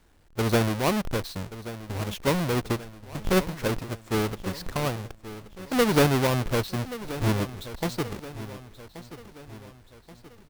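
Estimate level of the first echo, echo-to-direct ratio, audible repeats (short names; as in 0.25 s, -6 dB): -14.5 dB, -13.5 dB, 4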